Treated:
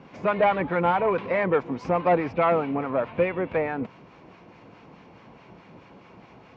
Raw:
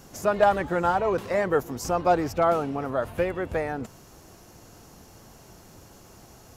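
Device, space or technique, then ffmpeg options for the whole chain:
guitar amplifier with harmonic tremolo: -filter_complex "[0:a]acrossover=split=890[s0][s1];[s0]aeval=exprs='val(0)*(1-0.5/2+0.5/2*cos(2*PI*4.7*n/s))':c=same[s2];[s1]aeval=exprs='val(0)*(1-0.5/2-0.5/2*cos(2*PI*4.7*n/s))':c=same[s3];[s2][s3]amix=inputs=2:normalize=0,asoftclip=type=tanh:threshold=0.126,highpass=81,equalizer=f=83:t=q:w=4:g=-9,equalizer=f=180:t=q:w=4:g=5,equalizer=f=270:t=q:w=4:g=4,equalizer=f=500:t=q:w=4:g=4,equalizer=f=1000:t=q:w=4:g=7,equalizer=f=2300:t=q:w=4:g=10,lowpass=f=3500:w=0.5412,lowpass=f=3500:w=1.3066,volume=1.26"

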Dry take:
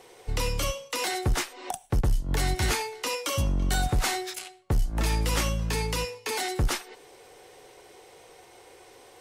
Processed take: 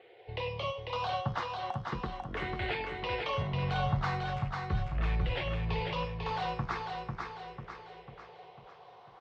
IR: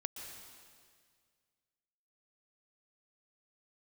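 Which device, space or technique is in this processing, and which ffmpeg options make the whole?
barber-pole phaser into a guitar amplifier: -filter_complex "[0:a]asplit=3[s0][s1][s2];[s0]afade=t=out:st=3.52:d=0.02[s3];[s1]asubboost=boost=6.5:cutoff=100,afade=t=in:st=3.52:d=0.02,afade=t=out:st=5.29:d=0.02[s4];[s2]afade=t=in:st=5.29:d=0.02[s5];[s3][s4][s5]amix=inputs=3:normalize=0,asplit=2[s6][s7];[s7]afreqshift=0.39[s8];[s6][s8]amix=inputs=2:normalize=1,asoftclip=type=tanh:threshold=0.376,highpass=110,equalizer=f=140:t=q:w=4:g=5,equalizer=f=280:t=q:w=4:g=-9,equalizer=f=700:t=q:w=4:g=4,equalizer=f=1100:t=q:w=4:g=7,lowpass=f=3400:w=0.5412,lowpass=f=3400:w=1.3066,aecho=1:1:496|992|1488|1984|2480|2976:0.631|0.309|0.151|0.0742|0.0364|0.0178,volume=0.668"

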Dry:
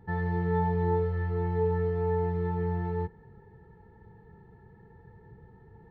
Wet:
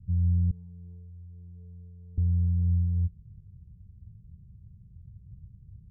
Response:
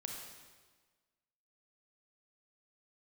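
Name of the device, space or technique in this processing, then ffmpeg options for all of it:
the neighbour's flat through the wall: -filter_complex "[0:a]lowpass=f=150:w=0.5412,lowpass=f=150:w=1.3066,equalizer=f=94:t=o:w=0.85:g=4,asettb=1/sr,asplit=3[s0][s1][s2];[s0]atrim=end=0.514[s3];[s1]atrim=start=0.51:end=2.18,asetpts=PTS-STARTPTS,afade=t=in:d=0.004:c=qsin,afade=t=out:st=1.666:d=0.004:c=qsin,highpass=f=1300:p=1[s4];[s2]atrim=start=2.176[s5];[s3][s4]acrossfade=d=0.004:c1=hsin:c2=qsin[s6];[s6][s5]acrossfade=d=0.004:c1=qsin:c2=hsin,equalizer=f=130:t=o:w=1:g=-6,volume=2.37"

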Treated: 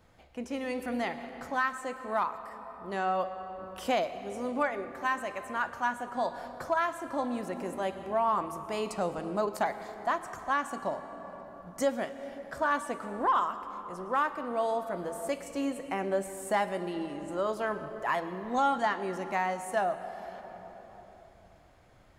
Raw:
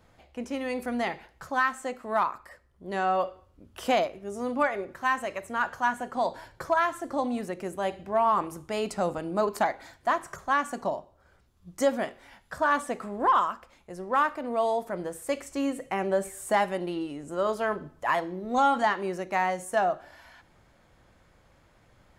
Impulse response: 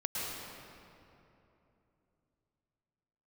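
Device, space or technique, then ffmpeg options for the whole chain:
ducked reverb: -filter_complex "[0:a]asplit=3[s0][s1][s2];[1:a]atrim=start_sample=2205[s3];[s1][s3]afir=irnorm=-1:irlink=0[s4];[s2]apad=whole_len=978159[s5];[s4][s5]sidechaincompress=threshold=0.0355:ratio=8:attack=5.5:release=1340,volume=0.531[s6];[s0][s6]amix=inputs=2:normalize=0,volume=0.562"

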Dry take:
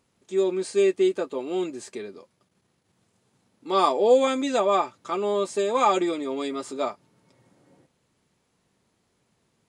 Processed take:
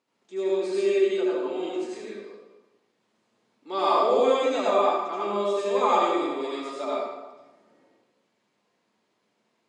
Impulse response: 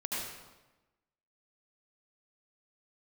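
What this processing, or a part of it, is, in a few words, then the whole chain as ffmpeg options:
supermarket ceiling speaker: -filter_complex "[0:a]highpass=270,lowpass=5800[s0];[1:a]atrim=start_sample=2205[s1];[s0][s1]afir=irnorm=-1:irlink=0,volume=0.631"

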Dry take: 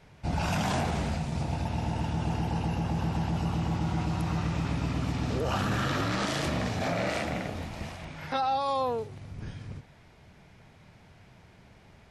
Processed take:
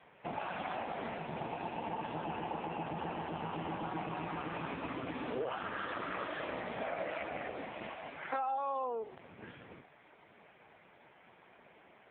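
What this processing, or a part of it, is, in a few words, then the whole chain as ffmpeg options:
voicemail: -af "highpass=360,lowpass=3000,acompressor=threshold=0.0158:ratio=8,volume=1.68" -ar 8000 -c:a libopencore_amrnb -b:a 5150

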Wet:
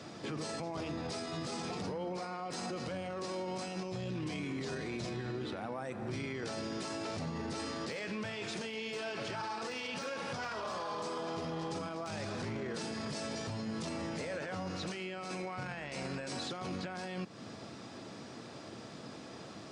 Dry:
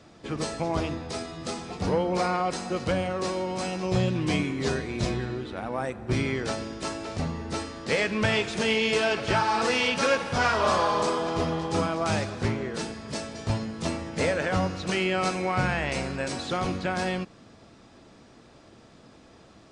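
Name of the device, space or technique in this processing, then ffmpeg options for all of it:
broadcast voice chain: -af "highpass=f=100:w=0.5412,highpass=f=100:w=1.3066,deesser=0.65,acompressor=threshold=0.0112:ratio=3,equalizer=f=5000:t=o:w=0.47:g=3,alimiter=level_in=3.98:limit=0.0631:level=0:latency=1:release=13,volume=0.251,volume=1.78"

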